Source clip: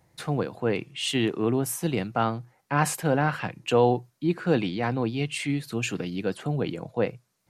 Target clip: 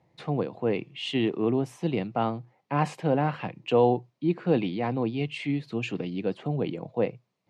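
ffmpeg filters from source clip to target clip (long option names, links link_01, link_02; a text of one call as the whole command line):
ffmpeg -i in.wav -af "highpass=120,lowpass=3000,equalizer=frequency=1500:width_type=o:width=0.6:gain=-10" out.wav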